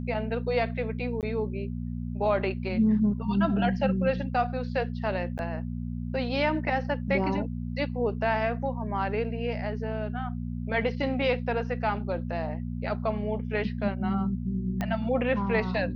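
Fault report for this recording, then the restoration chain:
hum 60 Hz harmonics 4 -33 dBFS
1.21–1.23 gap 18 ms
5.38–5.39 gap 9.8 ms
14.81 pop -17 dBFS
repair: de-click; de-hum 60 Hz, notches 4; interpolate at 1.21, 18 ms; interpolate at 5.38, 9.8 ms

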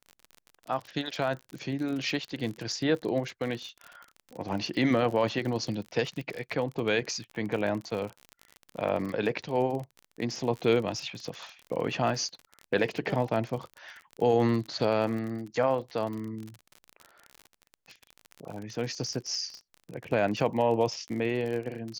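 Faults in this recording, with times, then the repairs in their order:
crackle 42/s -34 dBFS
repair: de-click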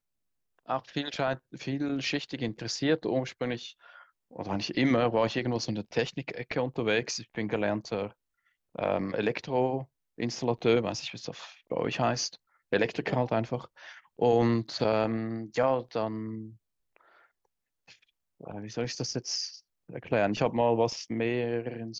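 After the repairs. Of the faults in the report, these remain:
none

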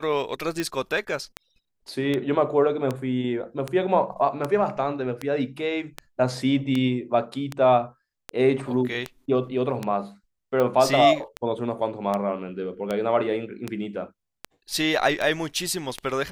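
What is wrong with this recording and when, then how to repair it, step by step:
tick 78 rpm -13 dBFS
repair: de-click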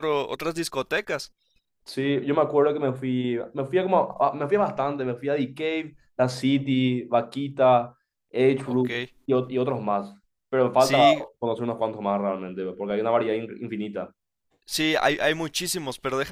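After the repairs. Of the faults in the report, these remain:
none

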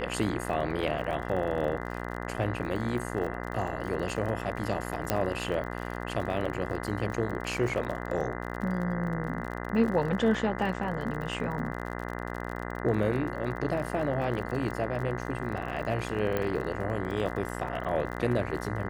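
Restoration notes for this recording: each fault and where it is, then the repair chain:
buzz 60 Hz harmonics 34 -36 dBFS
crackle 38/s -35 dBFS
5.1 pop -10 dBFS
16.37 pop -16 dBFS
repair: de-click; de-hum 60 Hz, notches 34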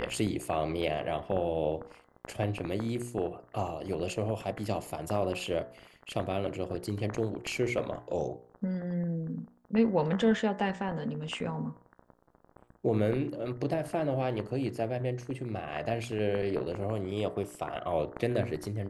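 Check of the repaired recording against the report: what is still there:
none

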